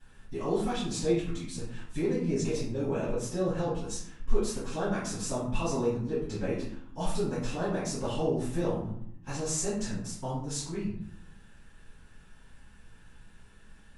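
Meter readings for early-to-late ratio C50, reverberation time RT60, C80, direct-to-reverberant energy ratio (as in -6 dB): 2.0 dB, 0.70 s, 6.5 dB, -15.0 dB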